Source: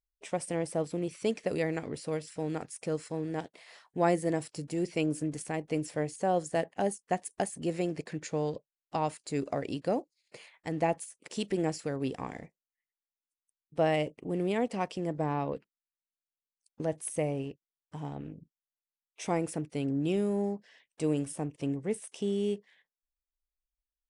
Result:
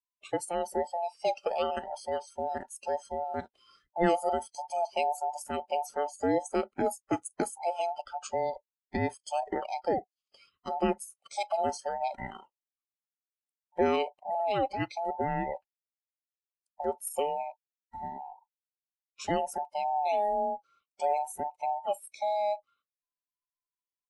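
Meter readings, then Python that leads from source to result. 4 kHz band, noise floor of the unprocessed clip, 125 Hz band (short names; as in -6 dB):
+1.0 dB, under -85 dBFS, -9.0 dB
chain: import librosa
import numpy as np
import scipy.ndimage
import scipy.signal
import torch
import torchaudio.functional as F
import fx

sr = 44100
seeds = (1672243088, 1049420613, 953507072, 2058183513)

y = fx.band_invert(x, sr, width_hz=1000)
y = fx.noise_reduce_blind(y, sr, reduce_db=18)
y = F.gain(torch.from_numpy(y), 1.0).numpy()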